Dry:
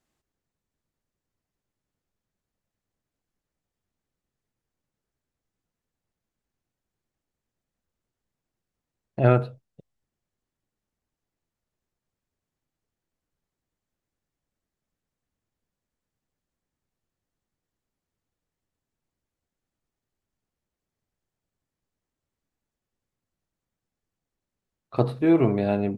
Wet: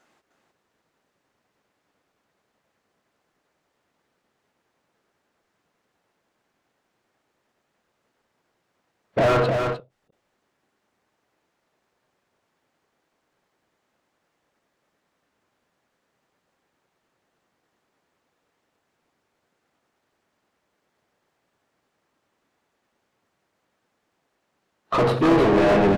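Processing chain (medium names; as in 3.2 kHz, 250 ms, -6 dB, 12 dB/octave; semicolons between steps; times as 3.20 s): harmony voices -4 st -10 dB; bass shelf 190 Hz -3.5 dB; in parallel at -1 dB: compression, threshold -30 dBFS, peak gain reduction 15.5 dB; on the sum: spectral noise reduction 10 dB; overdrive pedal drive 40 dB, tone 1.4 kHz, clips at -3 dBFS; on a send: delay 305 ms -5.5 dB; on the sum: endings held to a fixed fall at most 240 dB/s; trim -7.5 dB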